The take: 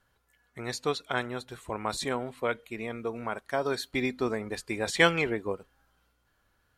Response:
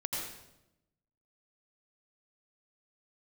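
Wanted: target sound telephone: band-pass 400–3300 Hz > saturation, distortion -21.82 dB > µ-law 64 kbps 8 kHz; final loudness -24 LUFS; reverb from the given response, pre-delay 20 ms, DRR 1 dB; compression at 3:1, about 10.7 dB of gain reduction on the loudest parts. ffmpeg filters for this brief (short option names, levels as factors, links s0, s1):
-filter_complex "[0:a]acompressor=threshold=0.0316:ratio=3,asplit=2[s0][s1];[1:a]atrim=start_sample=2205,adelay=20[s2];[s1][s2]afir=irnorm=-1:irlink=0,volume=0.596[s3];[s0][s3]amix=inputs=2:normalize=0,highpass=400,lowpass=3300,asoftclip=threshold=0.0891,volume=3.98" -ar 8000 -c:a pcm_mulaw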